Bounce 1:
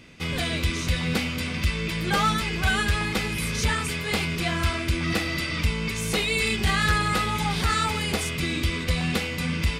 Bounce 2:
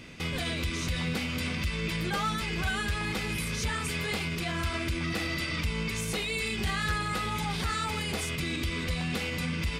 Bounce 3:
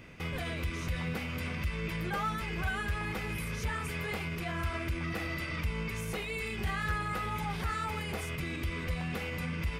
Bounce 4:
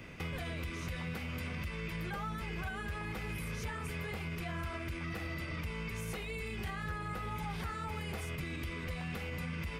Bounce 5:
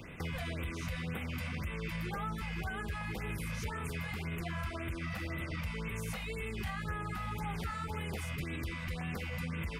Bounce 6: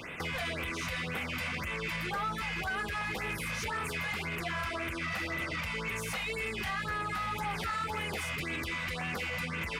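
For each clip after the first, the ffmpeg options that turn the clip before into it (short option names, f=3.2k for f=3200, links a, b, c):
-af "alimiter=level_in=1.5dB:limit=-24dB:level=0:latency=1:release=150,volume=-1.5dB,volume=2.5dB"
-af "equalizer=f=250:t=o:w=1:g=-5,equalizer=f=4k:t=o:w=1:g=-9,equalizer=f=8k:t=o:w=1:g=-8,volume=-1.5dB"
-filter_complex "[0:a]acrossover=split=150|870[a][b][c];[a]acompressor=threshold=-43dB:ratio=4[d];[b]acompressor=threshold=-46dB:ratio=4[e];[c]acompressor=threshold=-46dB:ratio=4[f];[d][e][f]amix=inputs=3:normalize=0,volume=2dB"
-af "afftfilt=real='re*(1-between(b*sr/1024,310*pow(5600/310,0.5+0.5*sin(2*PI*1.9*pts/sr))/1.41,310*pow(5600/310,0.5+0.5*sin(2*PI*1.9*pts/sr))*1.41))':imag='im*(1-between(b*sr/1024,310*pow(5600/310,0.5+0.5*sin(2*PI*1.9*pts/sr))/1.41,310*pow(5600/310,0.5+0.5*sin(2*PI*1.9*pts/sr))*1.41))':win_size=1024:overlap=0.75,volume=1.5dB"
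-filter_complex "[0:a]asplit=2[a][b];[b]highpass=f=720:p=1,volume=16dB,asoftclip=type=tanh:threshold=-25.5dB[c];[a][c]amix=inputs=2:normalize=0,lowpass=f=6.6k:p=1,volume=-6dB"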